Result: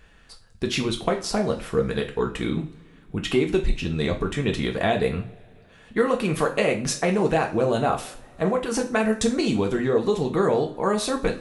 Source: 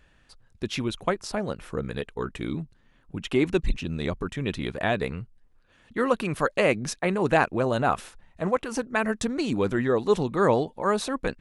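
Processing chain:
dynamic equaliser 1,500 Hz, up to −5 dB, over −37 dBFS, Q 1.1
downward compressor, threshold −24 dBFS, peak gain reduction 8.5 dB
on a send: convolution reverb, pre-delay 3 ms, DRR 2 dB
on the sum: level +5 dB

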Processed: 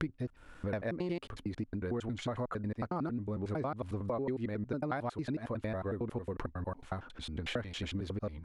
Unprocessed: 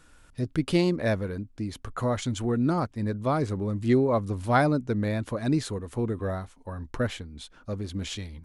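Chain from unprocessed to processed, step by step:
slices reordered back to front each 91 ms, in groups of 7
bass and treble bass −3 dB, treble −13 dB
downward compressor 6 to 1, threshold −39 dBFS, peak gain reduction 20 dB
level +5 dB

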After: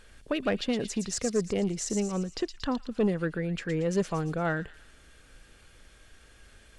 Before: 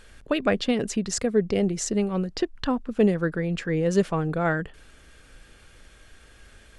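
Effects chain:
soft clipping −13.5 dBFS, distortion −19 dB
delay with a high-pass on its return 115 ms, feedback 52%, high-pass 3,800 Hz, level −4.5 dB
level −4 dB

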